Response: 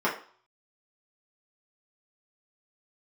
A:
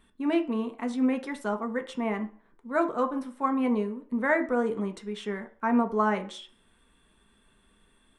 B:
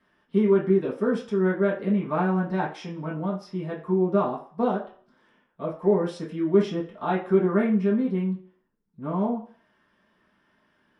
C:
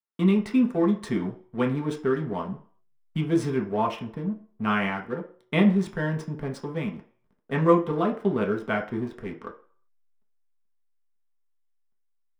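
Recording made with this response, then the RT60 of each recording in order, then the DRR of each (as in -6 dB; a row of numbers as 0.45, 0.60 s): B; 0.45, 0.45, 0.45 s; 4.5, -7.5, 0.0 dB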